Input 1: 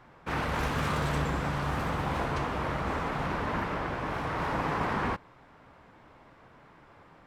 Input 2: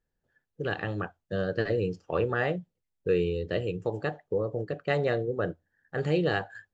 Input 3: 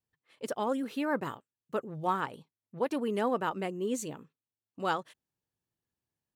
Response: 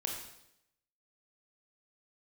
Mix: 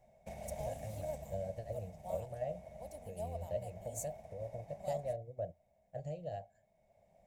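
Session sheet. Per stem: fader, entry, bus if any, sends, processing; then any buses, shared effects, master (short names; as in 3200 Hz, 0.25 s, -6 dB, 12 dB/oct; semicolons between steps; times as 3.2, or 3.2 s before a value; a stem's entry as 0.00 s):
+2.0 dB, 0.00 s, bus A, no send, compressor, threshold -34 dBFS, peak gain reduction 9 dB; small resonant body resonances 210/390/2200/3700 Hz, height 15 dB, ringing for 95 ms; auto duck -9 dB, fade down 2.00 s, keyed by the second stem
-7.5 dB, 0.00 s, bus A, no send, low shelf 430 Hz +8.5 dB
-11.0 dB, 0.00 s, no bus, no send, high shelf 5900 Hz +9 dB
bus A: 0.0 dB, graphic EQ 125/250/500/1000/2000/4000 Hz -6/-4/+3/-7/+10/-9 dB; compressor 3:1, threshold -32 dBFS, peak gain reduction 7 dB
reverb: off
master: EQ curve 130 Hz 0 dB, 410 Hz -23 dB, 640 Hz +10 dB, 1300 Hz -30 dB, 6600 Hz +5 dB; upward expander 1.5:1, over -52 dBFS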